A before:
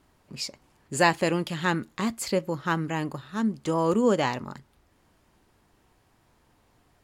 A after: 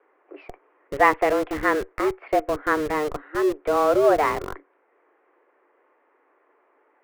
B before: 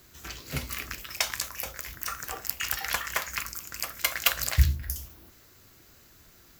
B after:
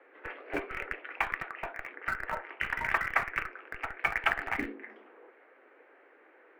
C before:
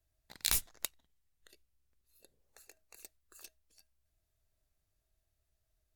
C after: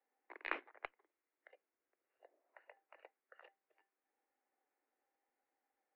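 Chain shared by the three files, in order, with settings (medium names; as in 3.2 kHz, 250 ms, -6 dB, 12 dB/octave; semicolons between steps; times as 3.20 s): mistuned SSB +150 Hz 180–2100 Hz; in parallel at -7 dB: Schmitt trigger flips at -32.5 dBFS; on the sum: trim +3.5 dB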